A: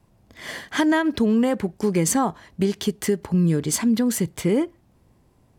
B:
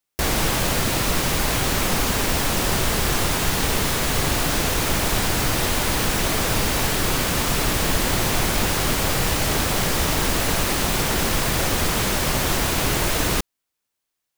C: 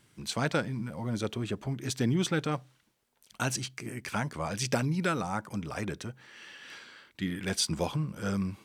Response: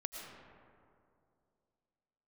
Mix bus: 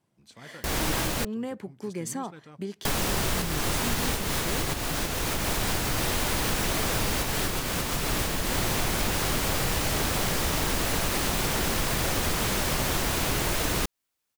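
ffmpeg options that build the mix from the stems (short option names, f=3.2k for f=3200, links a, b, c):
-filter_complex "[0:a]highpass=140,volume=-12.5dB[a];[1:a]adelay=450,volume=-0.5dB,asplit=3[b][c][d];[b]atrim=end=1.25,asetpts=PTS-STARTPTS,afade=t=out:st=1.246:d=0.004:c=hsin[e];[c]atrim=start=1.25:end=2.85,asetpts=PTS-STARTPTS,volume=0[f];[d]atrim=start=2.85,asetpts=PTS-STARTPTS,afade=t=in:d=0.004:c=hsin[g];[e][f][g]concat=n=3:v=0:a=1[h];[2:a]volume=-18.5dB,asplit=2[i][j];[j]apad=whole_len=653615[k];[h][k]sidechaincompress=threshold=-49dB:ratio=8:attack=16:release=356[l];[a][l][i]amix=inputs=3:normalize=0,acompressor=threshold=-25dB:ratio=2.5"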